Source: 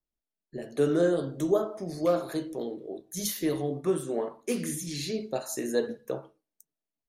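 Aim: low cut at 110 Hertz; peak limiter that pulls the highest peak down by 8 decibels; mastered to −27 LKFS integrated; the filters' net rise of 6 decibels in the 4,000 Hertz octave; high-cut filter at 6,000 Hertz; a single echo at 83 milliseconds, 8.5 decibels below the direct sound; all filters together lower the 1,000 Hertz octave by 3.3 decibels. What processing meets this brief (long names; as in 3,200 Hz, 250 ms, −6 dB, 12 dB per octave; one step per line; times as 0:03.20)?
high-pass filter 110 Hz
low-pass filter 6,000 Hz
parametric band 1,000 Hz −5.5 dB
parametric band 4,000 Hz +8 dB
brickwall limiter −21 dBFS
single-tap delay 83 ms −8.5 dB
level +5.5 dB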